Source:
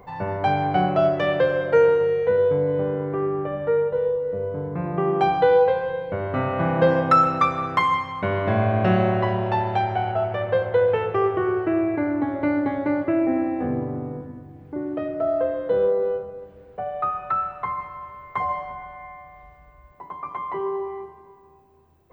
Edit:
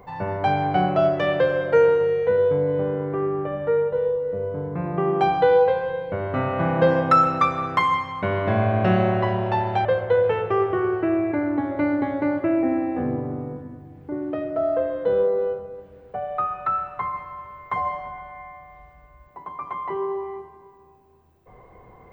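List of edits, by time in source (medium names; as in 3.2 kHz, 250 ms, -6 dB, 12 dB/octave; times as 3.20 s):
9.85–10.49 s: delete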